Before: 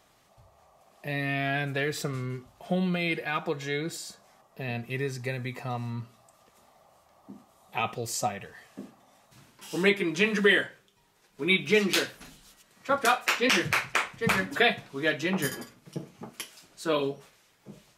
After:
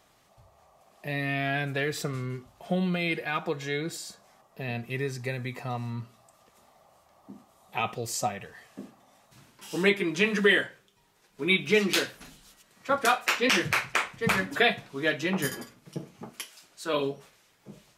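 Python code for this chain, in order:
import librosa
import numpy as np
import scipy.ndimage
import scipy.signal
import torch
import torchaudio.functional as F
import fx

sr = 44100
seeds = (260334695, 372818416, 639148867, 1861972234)

y = fx.low_shelf(x, sr, hz=390.0, db=-9.0, at=(16.39, 16.94))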